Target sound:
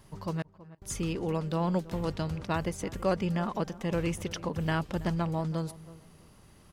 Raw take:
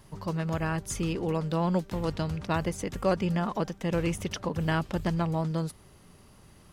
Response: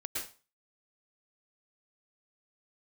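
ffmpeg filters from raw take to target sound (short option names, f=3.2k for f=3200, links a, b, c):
-filter_complex "[0:a]asettb=1/sr,asplit=3[a][b][c];[a]atrim=end=0.424[d];[b]atrim=start=0.42:end=0.82,asetpts=PTS-STARTPTS,afade=t=in:d=0.004:c=qsin,afade=t=out:st=0.396:d=0.004:c=qsin,agate=range=-40dB:threshold=-23dB:ratio=16:detection=peak[e];[c]atrim=start=0.816[f];[d][e]acrossfade=d=0.004:c1=hsin:c2=qsin[g];[g][f]acrossfade=d=0.004:c1=qsin:c2=hsin,asplit=2[h][i];[i]adelay=326,lowpass=f=1.3k:p=1,volume=-17dB,asplit=2[j][k];[k]adelay=326,lowpass=f=1.3k:p=1,volume=0.21[l];[h][j][l]amix=inputs=3:normalize=0,volume=-2dB"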